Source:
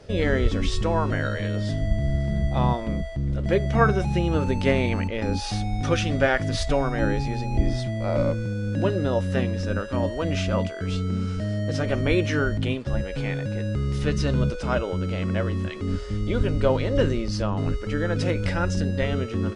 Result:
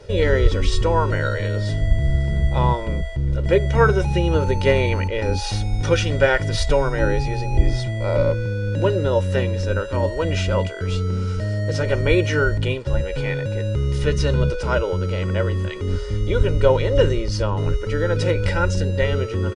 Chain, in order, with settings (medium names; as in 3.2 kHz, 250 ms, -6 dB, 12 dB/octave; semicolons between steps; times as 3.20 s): comb 2.1 ms, depth 65%; trim +2.5 dB